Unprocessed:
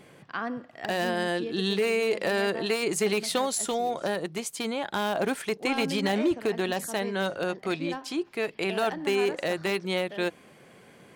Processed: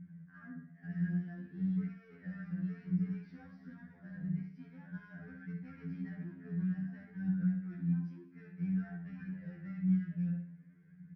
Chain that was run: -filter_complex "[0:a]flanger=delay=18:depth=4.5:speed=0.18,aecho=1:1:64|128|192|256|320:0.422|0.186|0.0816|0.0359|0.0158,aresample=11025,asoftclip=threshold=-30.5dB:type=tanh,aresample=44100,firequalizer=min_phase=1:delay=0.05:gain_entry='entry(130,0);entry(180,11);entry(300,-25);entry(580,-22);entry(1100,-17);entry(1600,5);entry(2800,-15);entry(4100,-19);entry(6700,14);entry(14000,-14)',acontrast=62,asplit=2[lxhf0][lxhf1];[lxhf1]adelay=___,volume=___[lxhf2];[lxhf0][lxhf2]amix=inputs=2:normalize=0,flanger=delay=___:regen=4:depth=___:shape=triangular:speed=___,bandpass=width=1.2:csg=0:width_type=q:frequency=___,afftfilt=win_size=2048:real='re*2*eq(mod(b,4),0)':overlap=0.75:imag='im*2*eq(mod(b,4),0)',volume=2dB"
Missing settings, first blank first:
26, -14dB, 0.4, 6.8, 0.54, 230